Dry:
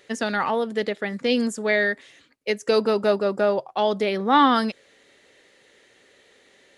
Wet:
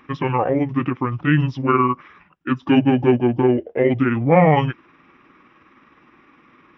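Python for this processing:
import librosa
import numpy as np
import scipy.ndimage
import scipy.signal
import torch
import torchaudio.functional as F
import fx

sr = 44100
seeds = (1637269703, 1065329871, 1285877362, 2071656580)

y = fx.pitch_heads(x, sr, semitones=-8.5)
y = scipy.signal.savgol_filter(y, 25, 4, mode='constant')
y = fx.notch(y, sr, hz=690.0, q=12.0)
y = F.gain(torch.from_numpy(y), 6.0).numpy()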